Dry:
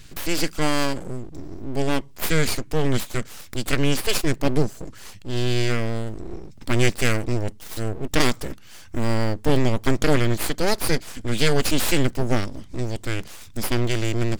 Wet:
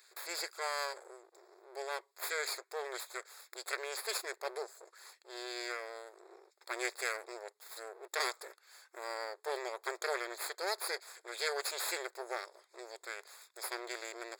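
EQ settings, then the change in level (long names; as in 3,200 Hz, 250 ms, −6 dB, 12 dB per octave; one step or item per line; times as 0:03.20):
moving average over 15 samples
linear-phase brick-wall high-pass 350 Hz
first difference
+8.5 dB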